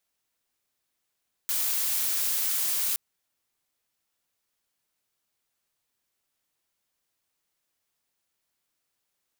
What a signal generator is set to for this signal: noise blue, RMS -27 dBFS 1.47 s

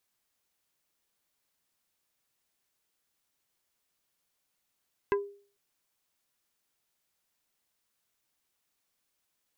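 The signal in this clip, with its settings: wood hit plate, lowest mode 403 Hz, decay 0.44 s, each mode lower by 4 dB, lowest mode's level -21.5 dB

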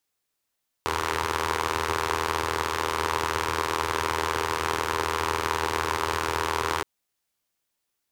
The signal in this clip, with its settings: four-cylinder engine model, steady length 5.97 s, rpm 2400, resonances 99/420/970 Hz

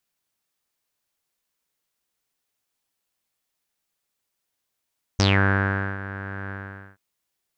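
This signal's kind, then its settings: synth note saw G2 12 dB/octave, low-pass 1.6 kHz, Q 8.6, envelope 2 oct, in 0.19 s, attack 4.8 ms, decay 0.78 s, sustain -16.5 dB, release 0.47 s, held 1.31 s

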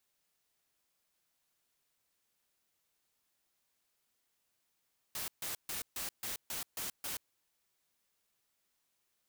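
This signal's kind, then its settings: noise bursts white, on 0.13 s, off 0.14 s, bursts 8, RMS -39.5 dBFS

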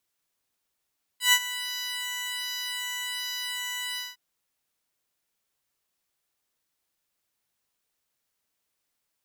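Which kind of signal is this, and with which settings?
synth patch with pulse-width modulation B5, oscillator 2 triangle, interval +7 st, oscillator 2 level -12 dB, sub -29 dB, filter highpass, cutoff 1.5 kHz, Q 0.73, filter envelope 1.5 oct, filter decay 0.08 s, attack 127 ms, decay 0.06 s, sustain -15.5 dB, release 0.19 s, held 2.77 s, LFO 1.3 Hz, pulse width 16%, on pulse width 5%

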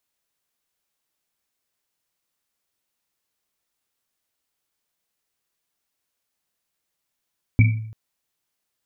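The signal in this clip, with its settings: Risset drum length 0.34 s, pitch 110 Hz, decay 0.75 s, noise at 2.3 kHz, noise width 120 Hz, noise 15%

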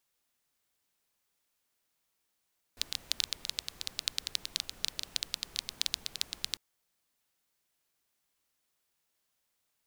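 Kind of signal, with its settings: rain from filtered ticks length 3.80 s, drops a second 11, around 4 kHz, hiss -16.5 dB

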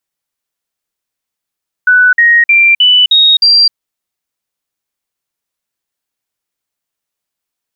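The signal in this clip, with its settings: stepped sine 1.49 kHz up, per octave 3, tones 6, 0.26 s, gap 0.05 s -3.5 dBFS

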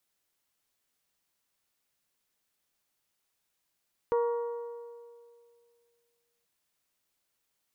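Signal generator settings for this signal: metal hit bell, length 2.33 s, lowest mode 472 Hz, decay 2.25 s, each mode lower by 8 dB, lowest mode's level -23 dB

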